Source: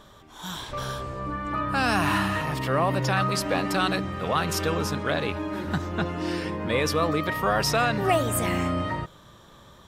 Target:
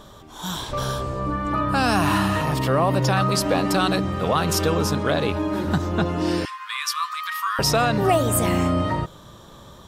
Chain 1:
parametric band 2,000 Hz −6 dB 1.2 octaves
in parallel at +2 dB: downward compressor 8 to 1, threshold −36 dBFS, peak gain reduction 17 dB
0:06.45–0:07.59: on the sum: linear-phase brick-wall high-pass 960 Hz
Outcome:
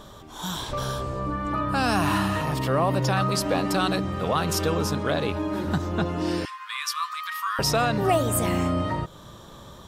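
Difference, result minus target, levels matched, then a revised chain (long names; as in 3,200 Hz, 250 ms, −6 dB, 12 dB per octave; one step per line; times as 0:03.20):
downward compressor: peak gain reduction +10 dB
parametric band 2,000 Hz −6 dB 1.2 octaves
in parallel at +2 dB: downward compressor 8 to 1, threshold −24.5 dBFS, peak gain reduction 7 dB
0:06.45–0:07.59: on the sum: linear-phase brick-wall high-pass 960 Hz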